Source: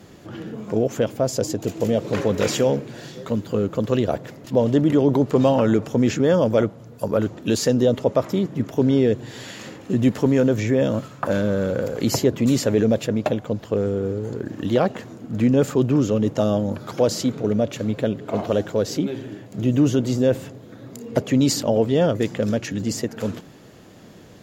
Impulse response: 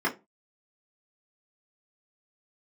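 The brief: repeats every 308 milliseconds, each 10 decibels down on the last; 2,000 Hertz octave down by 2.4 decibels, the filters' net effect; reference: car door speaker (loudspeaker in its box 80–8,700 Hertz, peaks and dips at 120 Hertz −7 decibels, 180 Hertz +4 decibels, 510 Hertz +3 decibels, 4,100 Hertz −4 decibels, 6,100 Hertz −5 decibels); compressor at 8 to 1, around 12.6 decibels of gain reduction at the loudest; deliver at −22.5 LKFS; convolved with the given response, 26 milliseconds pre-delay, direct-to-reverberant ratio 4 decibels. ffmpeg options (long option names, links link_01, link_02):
-filter_complex "[0:a]equalizer=frequency=2000:width_type=o:gain=-3,acompressor=threshold=-26dB:ratio=8,aecho=1:1:308|616|924|1232:0.316|0.101|0.0324|0.0104,asplit=2[link_01][link_02];[1:a]atrim=start_sample=2205,adelay=26[link_03];[link_02][link_03]afir=irnorm=-1:irlink=0,volume=-15.5dB[link_04];[link_01][link_04]amix=inputs=2:normalize=0,highpass=80,equalizer=frequency=120:width_type=q:width=4:gain=-7,equalizer=frequency=180:width_type=q:width=4:gain=4,equalizer=frequency=510:width_type=q:width=4:gain=3,equalizer=frequency=4100:width_type=q:width=4:gain=-4,equalizer=frequency=6100:width_type=q:width=4:gain=-5,lowpass=frequency=8700:width=0.5412,lowpass=frequency=8700:width=1.3066,volume=6dB"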